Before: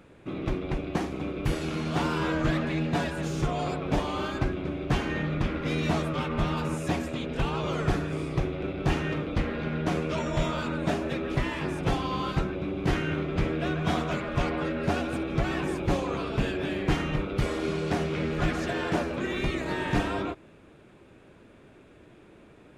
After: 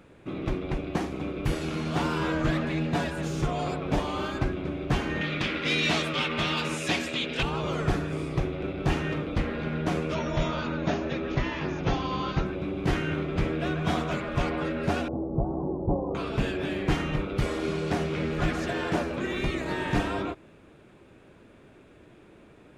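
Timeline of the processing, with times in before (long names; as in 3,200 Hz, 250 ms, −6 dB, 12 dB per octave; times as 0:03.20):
0:05.21–0:07.43: meter weighting curve D
0:10.14–0:12.46: linear-phase brick-wall low-pass 6,900 Hz
0:15.08–0:16.15: Butterworth low-pass 950 Hz 48 dB per octave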